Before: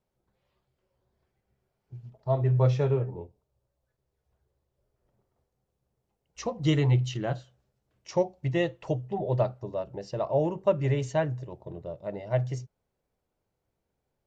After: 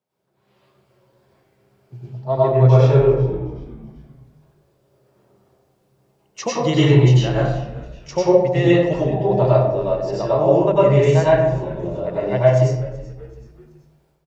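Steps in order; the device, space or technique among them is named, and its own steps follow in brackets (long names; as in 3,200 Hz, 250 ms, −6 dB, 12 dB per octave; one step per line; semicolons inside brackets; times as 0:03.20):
low-shelf EQ 110 Hz −9 dB
far laptop microphone (convolution reverb RT60 0.90 s, pre-delay 87 ms, DRR −7.5 dB; high-pass filter 100 Hz 24 dB per octave; automatic gain control)
echo with shifted repeats 380 ms, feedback 45%, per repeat −93 Hz, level −19.5 dB
level −1 dB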